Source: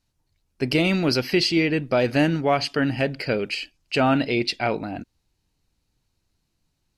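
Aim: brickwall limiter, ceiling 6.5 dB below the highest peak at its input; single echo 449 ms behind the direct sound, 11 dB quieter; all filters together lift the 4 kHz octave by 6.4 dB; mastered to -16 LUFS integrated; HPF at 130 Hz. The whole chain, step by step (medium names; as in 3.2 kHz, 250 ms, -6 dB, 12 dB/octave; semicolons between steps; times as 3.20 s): high-pass 130 Hz; peaking EQ 4 kHz +8 dB; peak limiter -9.5 dBFS; delay 449 ms -11 dB; trim +6 dB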